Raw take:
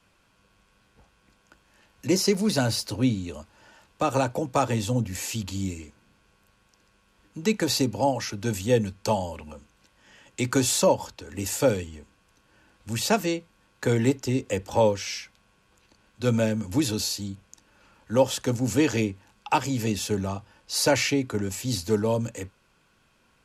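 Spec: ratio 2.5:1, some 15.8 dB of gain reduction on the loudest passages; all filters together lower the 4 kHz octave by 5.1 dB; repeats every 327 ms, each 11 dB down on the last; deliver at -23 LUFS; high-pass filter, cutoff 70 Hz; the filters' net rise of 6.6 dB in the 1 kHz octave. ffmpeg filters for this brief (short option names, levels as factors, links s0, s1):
-af "highpass=70,equalizer=f=1000:t=o:g=8.5,equalizer=f=4000:t=o:g=-7,acompressor=threshold=0.0141:ratio=2.5,aecho=1:1:327|654|981:0.282|0.0789|0.0221,volume=4.73"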